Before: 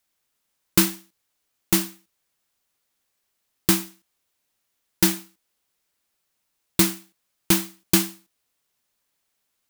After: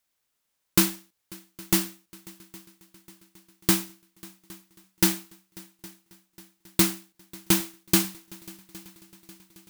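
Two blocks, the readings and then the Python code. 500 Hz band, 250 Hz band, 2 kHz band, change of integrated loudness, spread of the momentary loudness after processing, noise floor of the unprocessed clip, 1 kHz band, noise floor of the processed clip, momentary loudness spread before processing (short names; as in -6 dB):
-2.5 dB, -2.5 dB, -2.5 dB, -2.5 dB, 21 LU, -76 dBFS, -2.0 dB, -78 dBFS, 14 LU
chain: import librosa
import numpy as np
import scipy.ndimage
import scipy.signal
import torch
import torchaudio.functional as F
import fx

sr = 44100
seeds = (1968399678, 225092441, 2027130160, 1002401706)

y = fx.echo_heads(x, sr, ms=271, heads='second and third', feedback_pct=56, wet_db=-23.5)
y = fx.mod_noise(y, sr, seeds[0], snr_db=14)
y = y * librosa.db_to_amplitude(-2.5)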